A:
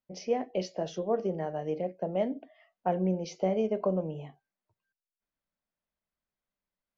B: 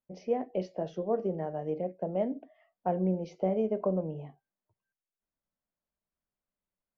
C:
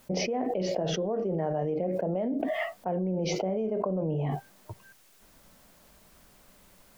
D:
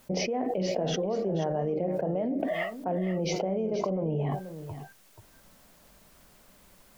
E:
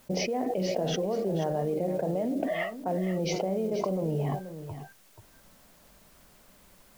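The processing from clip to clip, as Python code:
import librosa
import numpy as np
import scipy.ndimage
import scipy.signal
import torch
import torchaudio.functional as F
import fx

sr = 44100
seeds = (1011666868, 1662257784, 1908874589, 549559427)

y1 = fx.lowpass(x, sr, hz=1100.0, slope=6)
y2 = fx.env_flatten(y1, sr, amount_pct=100)
y2 = y2 * librosa.db_to_amplitude(-5.0)
y3 = y2 + 10.0 ** (-11.5 / 20.0) * np.pad(y2, (int(482 * sr / 1000.0), 0))[:len(y2)]
y4 = fx.mod_noise(y3, sr, seeds[0], snr_db=29)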